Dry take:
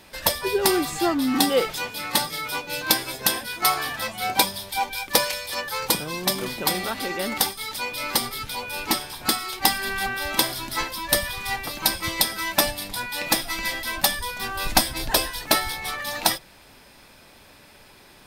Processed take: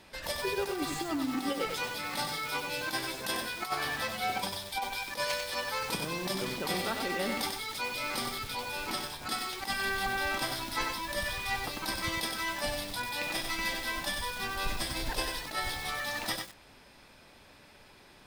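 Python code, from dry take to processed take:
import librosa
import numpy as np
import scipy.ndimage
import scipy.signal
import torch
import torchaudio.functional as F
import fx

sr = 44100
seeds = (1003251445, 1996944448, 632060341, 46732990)

y = fx.high_shelf(x, sr, hz=10000.0, db=-10.5)
y = fx.over_compress(y, sr, threshold_db=-24.0, ratio=-0.5)
y = fx.echo_crushed(y, sr, ms=95, feedback_pct=35, bits=6, wet_db=-3.5)
y = F.gain(torch.from_numpy(y), -7.0).numpy()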